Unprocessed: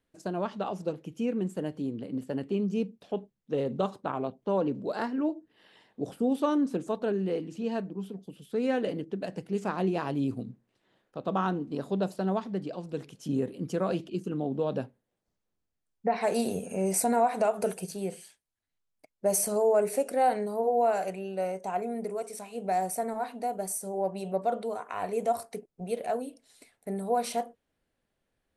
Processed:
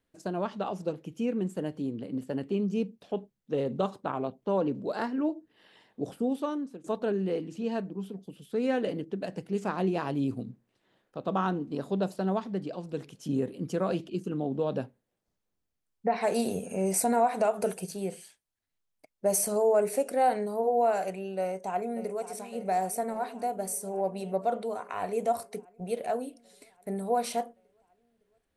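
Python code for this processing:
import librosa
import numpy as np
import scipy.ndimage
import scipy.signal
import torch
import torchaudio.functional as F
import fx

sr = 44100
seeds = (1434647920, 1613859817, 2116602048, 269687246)

y = fx.echo_throw(x, sr, start_s=21.4, length_s=0.88, ms=560, feedback_pct=75, wet_db=-13.0)
y = fx.edit(y, sr, fx.fade_out_to(start_s=6.09, length_s=0.75, floor_db=-18.5), tone=tone)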